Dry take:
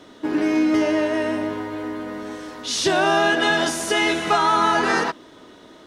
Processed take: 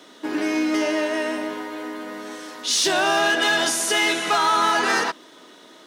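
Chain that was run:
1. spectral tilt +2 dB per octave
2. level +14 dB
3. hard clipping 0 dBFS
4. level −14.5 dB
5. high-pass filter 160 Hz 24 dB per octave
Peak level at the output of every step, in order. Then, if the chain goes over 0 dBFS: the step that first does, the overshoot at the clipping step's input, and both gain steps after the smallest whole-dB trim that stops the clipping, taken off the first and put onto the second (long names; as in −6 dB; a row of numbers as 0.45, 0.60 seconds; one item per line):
−6.5, +7.5, 0.0, −14.5, −10.0 dBFS
step 2, 7.5 dB
step 2 +6 dB, step 4 −6.5 dB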